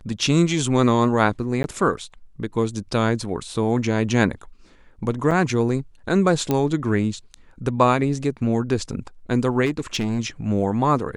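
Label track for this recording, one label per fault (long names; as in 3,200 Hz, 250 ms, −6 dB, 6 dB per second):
1.630000	1.640000	drop-out 11 ms
5.310000	5.310000	drop-out 3.6 ms
6.510000	6.510000	click −8 dBFS
9.650000	10.200000	clipping −18 dBFS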